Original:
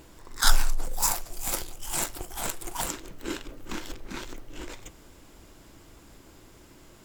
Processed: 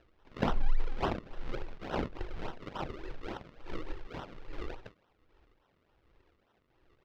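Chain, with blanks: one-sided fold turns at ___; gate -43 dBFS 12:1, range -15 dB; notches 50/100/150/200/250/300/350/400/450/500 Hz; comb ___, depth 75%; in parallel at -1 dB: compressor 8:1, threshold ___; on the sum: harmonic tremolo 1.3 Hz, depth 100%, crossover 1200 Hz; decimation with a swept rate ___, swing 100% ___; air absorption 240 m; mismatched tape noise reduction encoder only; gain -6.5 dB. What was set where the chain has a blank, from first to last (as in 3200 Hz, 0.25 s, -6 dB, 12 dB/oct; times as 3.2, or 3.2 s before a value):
-15 dBFS, 2.2 ms, -30 dBFS, 38×, 3.5 Hz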